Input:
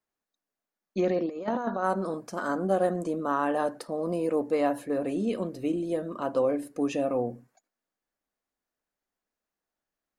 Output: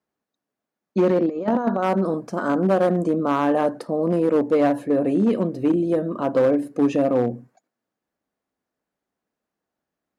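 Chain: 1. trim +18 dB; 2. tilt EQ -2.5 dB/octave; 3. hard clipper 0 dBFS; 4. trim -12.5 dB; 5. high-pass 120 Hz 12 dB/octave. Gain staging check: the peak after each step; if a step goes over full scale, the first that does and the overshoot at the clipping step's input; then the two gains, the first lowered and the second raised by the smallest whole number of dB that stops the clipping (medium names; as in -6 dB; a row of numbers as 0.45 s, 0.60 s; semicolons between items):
+4.5 dBFS, +7.0 dBFS, 0.0 dBFS, -12.5 dBFS, -8.5 dBFS; step 1, 7.0 dB; step 1 +11 dB, step 4 -5.5 dB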